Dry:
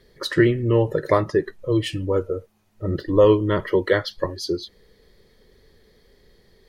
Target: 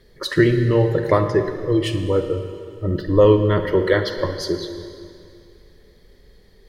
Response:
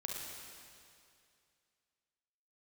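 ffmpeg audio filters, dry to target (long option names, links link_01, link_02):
-filter_complex "[0:a]asplit=2[link_01][link_02];[1:a]atrim=start_sample=2205,lowshelf=frequency=140:gain=9[link_03];[link_02][link_03]afir=irnorm=-1:irlink=0,volume=-2.5dB[link_04];[link_01][link_04]amix=inputs=2:normalize=0,volume=-2.5dB"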